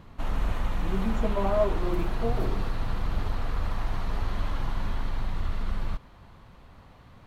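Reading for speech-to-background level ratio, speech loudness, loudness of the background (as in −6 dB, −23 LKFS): 2.0 dB, −31.5 LKFS, −33.5 LKFS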